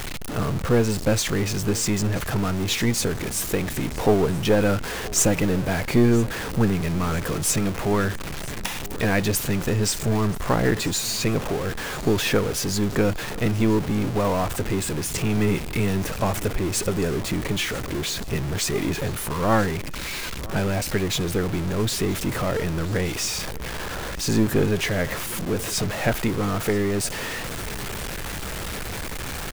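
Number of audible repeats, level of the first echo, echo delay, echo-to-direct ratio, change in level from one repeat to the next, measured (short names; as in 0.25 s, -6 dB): 2, -20.0 dB, 0.981 s, -19.5 dB, -8.0 dB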